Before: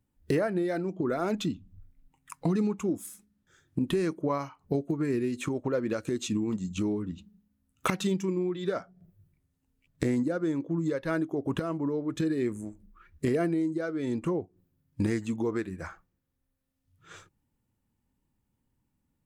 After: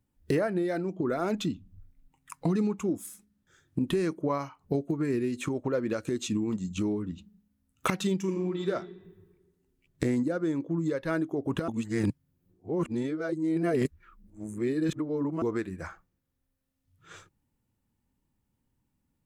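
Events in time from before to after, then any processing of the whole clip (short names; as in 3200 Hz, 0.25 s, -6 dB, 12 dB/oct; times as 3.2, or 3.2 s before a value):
8.19–8.68 reverb throw, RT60 1.5 s, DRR 5 dB
11.68–15.42 reverse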